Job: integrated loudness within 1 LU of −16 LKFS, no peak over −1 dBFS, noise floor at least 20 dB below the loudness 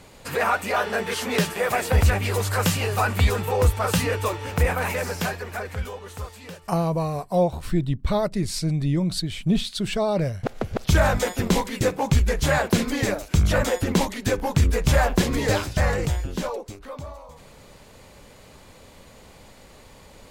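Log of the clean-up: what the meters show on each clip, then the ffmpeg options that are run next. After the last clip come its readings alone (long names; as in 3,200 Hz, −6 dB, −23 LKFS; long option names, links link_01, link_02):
integrated loudness −23.5 LKFS; sample peak −9.0 dBFS; target loudness −16.0 LKFS
→ -af "volume=7.5dB"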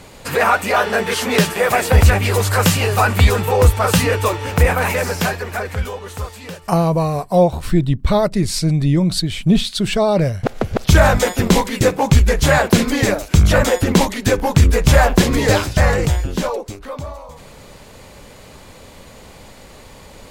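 integrated loudness −16.0 LKFS; sample peak −1.5 dBFS; background noise floor −41 dBFS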